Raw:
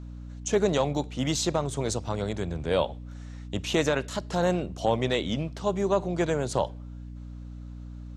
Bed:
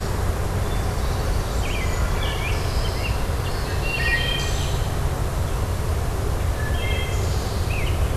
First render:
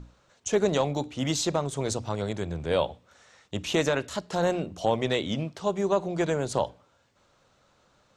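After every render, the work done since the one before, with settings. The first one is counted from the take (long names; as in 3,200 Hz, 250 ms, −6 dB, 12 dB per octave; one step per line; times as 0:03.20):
mains-hum notches 60/120/180/240/300 Hz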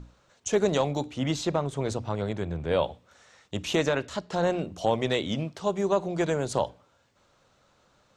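0:01.18–0:02.83: bass and treble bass +1 dB, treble −9 dB
0:03.76–0:04.59: high-frequency loss of the air 55 metres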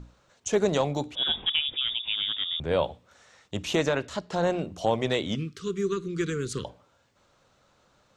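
0:01.15–0:02.60: voice inversion scrambler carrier 3,600 Hz
0:05.35–0:06.65: elliptic band-stop filter 440–1,200 Hz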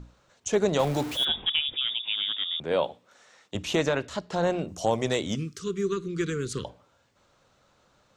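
0:00.79–0:01.25: converter with a step at zero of −31 dBFS
0:01.85–0:03.55: high-pass filter 200 Hz
0:04.68–0:05.64: high shelf with overshoot 4,700 Hz +6.5 dB, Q 1.5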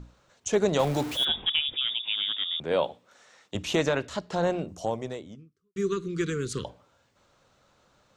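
0:04.24–0:05.76: fade out and dull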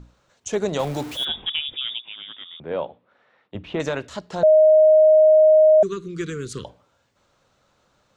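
0:02.00–0:03.80: high-frequency loss of the air 430 metres
0:04.43–0:05.83: beep over 623 Hz −9.5 dBFS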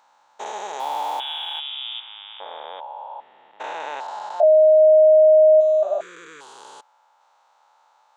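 spectrum averaged block by block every 400 ms
high-pass with resonance 860 Hz, resonance Q 8.7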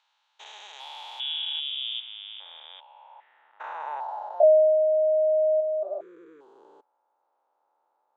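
band-pass filter sweep 3,200 Hz → 350 Hz, 0:02.76–0:04.86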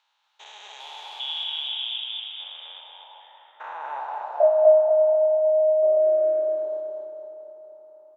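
on a send: repeating echo 239 ms, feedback 49%, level −4 dB
on the sum: comb and all-pass reverb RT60 4.2 s, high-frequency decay 0.35×, pre-delay 10 ms, DRR 6 dB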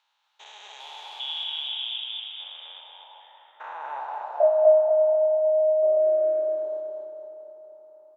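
level −1.5 dB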